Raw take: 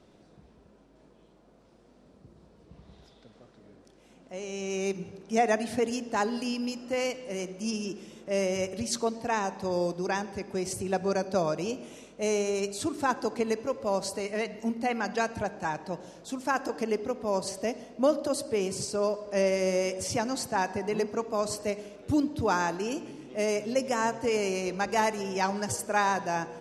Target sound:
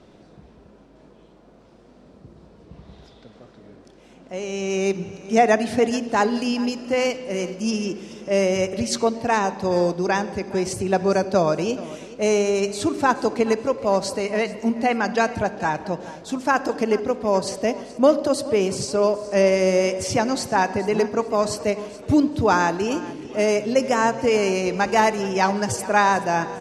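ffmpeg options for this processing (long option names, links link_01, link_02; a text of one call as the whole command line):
ffmpeg -i in.wav -filter_complex "[0:a]highshelf=frequency=9400:gain=-11.5,asplit=2[link_01][link_02];[link_02]aecho=0:1:425|850|1275:0.126|0.0466|0.0172[link_03];[link_01][link_03]amix=inputs=2:normalize=0,volume=8.5dB" out.wav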